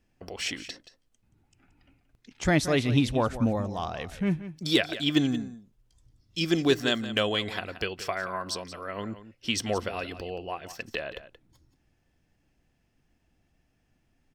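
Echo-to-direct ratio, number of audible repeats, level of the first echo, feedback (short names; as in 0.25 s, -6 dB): -13.5 dB, 1, -13.5 dB, no steady repeat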